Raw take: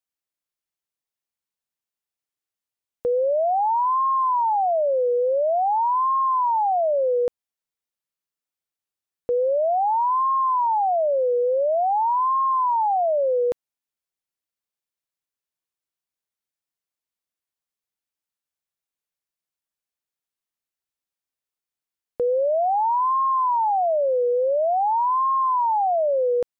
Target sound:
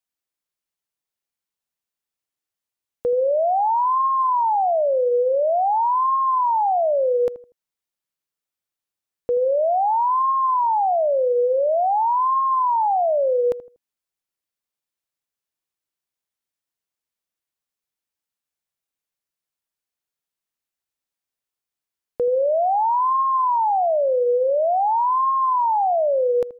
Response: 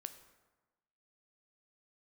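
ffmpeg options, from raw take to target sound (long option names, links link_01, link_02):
-filter_complex "[0:a]asplit=2[link_01][link_02];[link_02]adelay=80,lowpass=frequency=930:poles=1,volume=-14.5dB,asplit=2[link_03][link_04];[link_04]adelay=80,lowpass=frequency=930:poles=1,volume=0.32,asplit=2[link_05][link_06];[link_06]adelay=80,lowpass=frequency=930:poles=1,volume=0.32[link_07];[link_01][link_03][link_05][link_07]amix=inputs=4:normalize=0,volume=1.5dB"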